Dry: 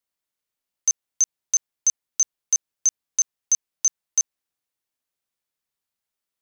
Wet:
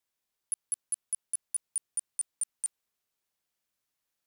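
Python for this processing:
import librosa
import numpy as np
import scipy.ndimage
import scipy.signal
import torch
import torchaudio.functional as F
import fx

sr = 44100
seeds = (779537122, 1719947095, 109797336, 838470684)

y = fx.speed_glide(x, sr, from_pct=171, to_pct=130)
y = fx.over_compress(y, sr, threshold_db=-25.0, ratio=-1.0)
y = F.gain(torch.from_numpy(y), -4.5).numpy()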